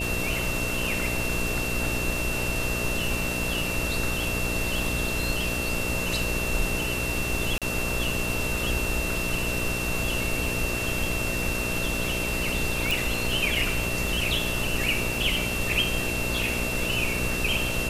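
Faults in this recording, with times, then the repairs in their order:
buzz 60 Hz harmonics 11 -32 dBFS
crackle 24/s -33 dBFS
tone 2700 Hz -30 dBFS
7.58–7.62 gap 37 ms
12.91 pop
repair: de-click; de-hum 60 Hz, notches 11; notch 2700 Hz, Q 30; interpolate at 7.58, 37 ms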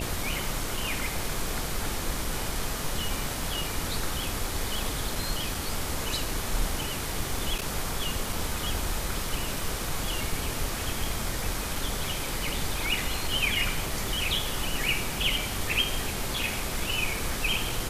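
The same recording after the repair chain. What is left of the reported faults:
12.91 pop

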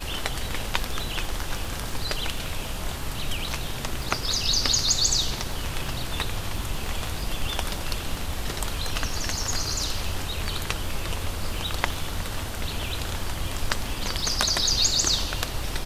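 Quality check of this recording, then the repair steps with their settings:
crackle 20/s -30 dBFS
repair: de-click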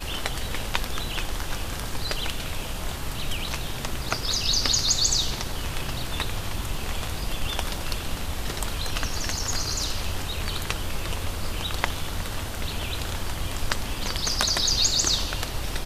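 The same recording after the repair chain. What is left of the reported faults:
none

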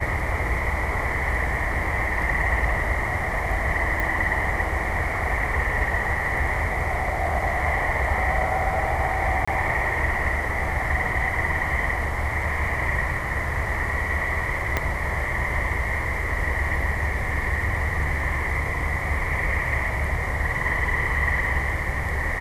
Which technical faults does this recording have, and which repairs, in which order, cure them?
4 pop
9.45–9.47 gap 25 ms
14.77 pop -8 dBFS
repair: de-click; interpolate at 9.45, 25 ms

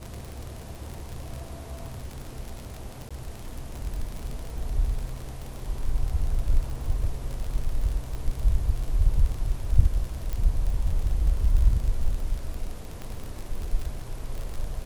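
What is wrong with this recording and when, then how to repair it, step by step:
crackle 44/s -30 dBFS
3.09–3.11 gap 16 ms
8.15 pop -23 dBFS
10.33 pop
13.02 pop -23 dBFS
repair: de-click; interpolate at 3.09, 16 ms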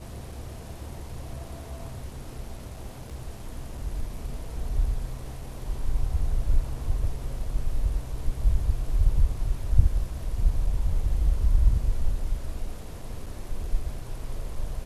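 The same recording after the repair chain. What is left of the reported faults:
8.15 pop
13.02 pop

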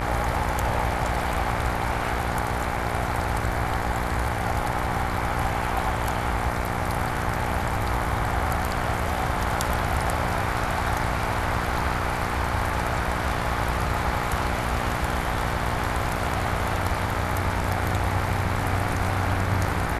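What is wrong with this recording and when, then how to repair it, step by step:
buzz 60 Hz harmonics 39 -30 dBFS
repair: de-hum 60 Hz, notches 39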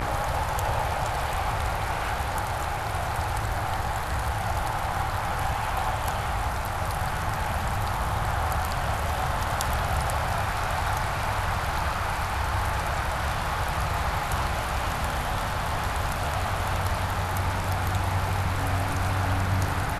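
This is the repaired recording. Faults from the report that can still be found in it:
none

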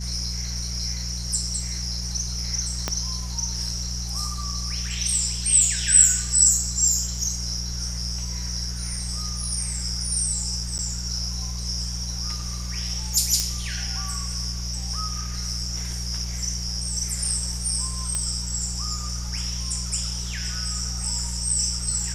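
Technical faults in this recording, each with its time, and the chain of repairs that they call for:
hum 60 Hz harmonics 3 -31 dBFS
2.88 pop -9 dBFS
10.78–10.79 gap 9.1 ms
13.4 pop -9 dBFS
18.15 pop -12 dBFS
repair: de-click; de-hum 60 Hz, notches 3; interpolate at 10.78, 9.1 ms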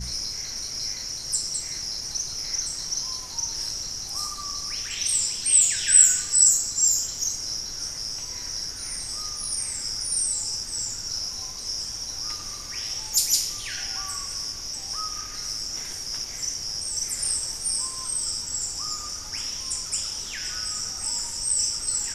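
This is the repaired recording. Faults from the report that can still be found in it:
2.88 pop

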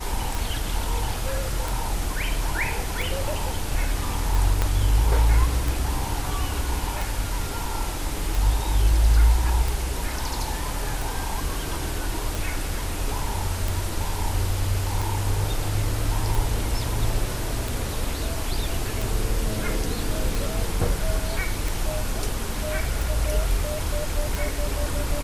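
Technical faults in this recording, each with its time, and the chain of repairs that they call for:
tick 45 rpm
4.62 pop -8 dBFS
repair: de-click

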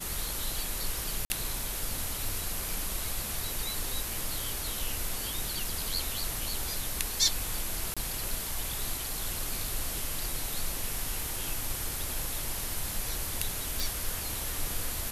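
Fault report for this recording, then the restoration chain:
1.25–1.3 gap 50 ms
7.94–7.97 gap 26 ms
13.8 pop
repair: de-click; interpolate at 1.25, 50 ms; interpolate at 7.94, 26 ms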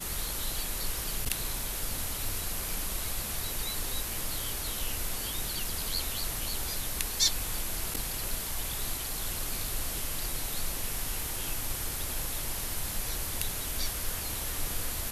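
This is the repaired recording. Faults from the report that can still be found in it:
none

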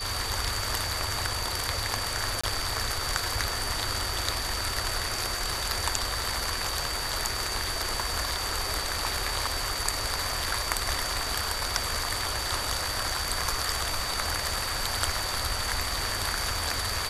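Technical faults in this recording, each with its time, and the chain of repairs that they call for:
tone 4600 Hz -34 dBFS
2.41–2.44 gap 25 ms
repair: notch 4600 Hz, Q 30; interpolate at 2.41, 25 ms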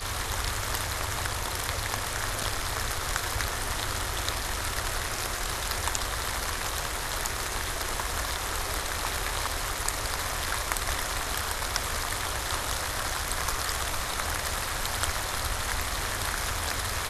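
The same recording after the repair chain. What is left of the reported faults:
none

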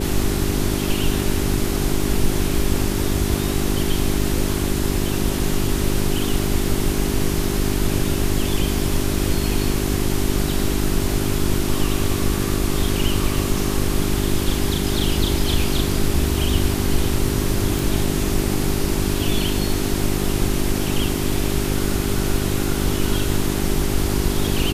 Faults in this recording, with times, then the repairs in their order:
hum 50 Hz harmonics 8 -24 dBFS
17.79 pop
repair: de-click; de-hum 50 Hz, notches 8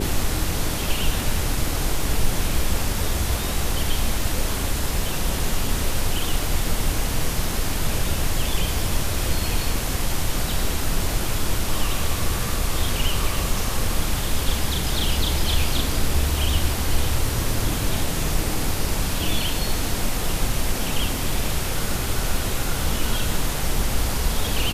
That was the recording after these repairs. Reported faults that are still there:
none

